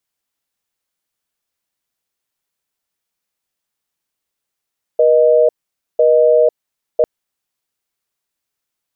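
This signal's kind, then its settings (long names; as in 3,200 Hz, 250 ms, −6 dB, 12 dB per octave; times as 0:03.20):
call progress tone busy tone, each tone −10.5 dBFS 2.05 s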